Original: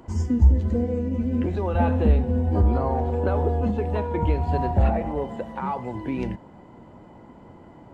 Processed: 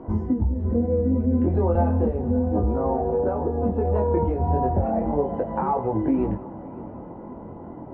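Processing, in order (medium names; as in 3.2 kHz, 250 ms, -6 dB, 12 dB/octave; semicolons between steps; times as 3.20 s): low-pass 1.1 kHz 12 dB/octave; peaking EQ 460 Hz +4.5 dB 2.7 oct; compression, threshold -24 dBFS, peak gain reduction 13.5 dB; chorus 0.34 Hz, delay 18.5 ms, depth 5.3 ms; multi-head delay 188 ms, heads first and third, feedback 59%, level -20.5 dB; trim +8 dB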